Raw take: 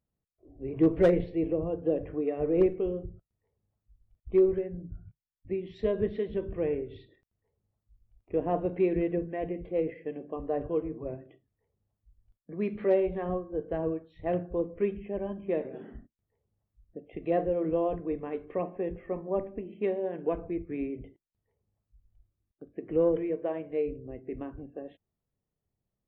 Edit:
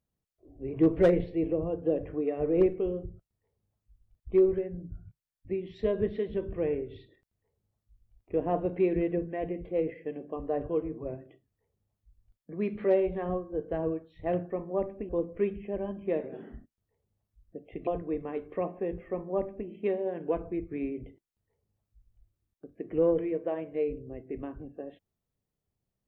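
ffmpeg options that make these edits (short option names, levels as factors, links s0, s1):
-filter_complex "[0:a]asplit=4[s0][s1][s2][s3];[s0]atrim=end=14.502[s4];[s1]atrim=start=19.068:end=19.662[s5];[s2]atrim=start=14.498:end=17.282[s6];[s3]atrim=start=17.848[s7];[s4][s5]acrossfade=d=0.004:c1=hsin:c2=hsin[s8];[s8][s6]acrossfade=d=0.004:c1=hsin:c2=hsin[s9];[s9][s7]acrossfade=d=0.004:c1=hsin:c2=hsin"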